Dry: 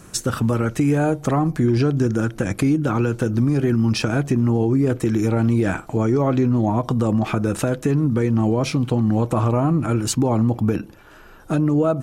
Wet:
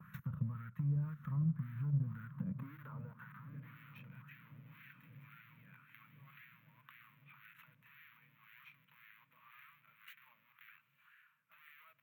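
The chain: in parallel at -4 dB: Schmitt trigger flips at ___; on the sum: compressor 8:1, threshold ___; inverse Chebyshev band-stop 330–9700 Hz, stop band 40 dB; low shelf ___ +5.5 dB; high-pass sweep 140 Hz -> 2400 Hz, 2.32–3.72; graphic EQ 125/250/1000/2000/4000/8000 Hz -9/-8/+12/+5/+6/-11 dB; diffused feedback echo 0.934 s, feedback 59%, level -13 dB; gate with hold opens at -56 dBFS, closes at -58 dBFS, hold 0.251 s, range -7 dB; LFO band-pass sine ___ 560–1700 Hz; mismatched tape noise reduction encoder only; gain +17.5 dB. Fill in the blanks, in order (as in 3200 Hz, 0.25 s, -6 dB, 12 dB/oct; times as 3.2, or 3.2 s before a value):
-19.5 dBFS, -27 dBFS, 260 Hz, 1.9 Hz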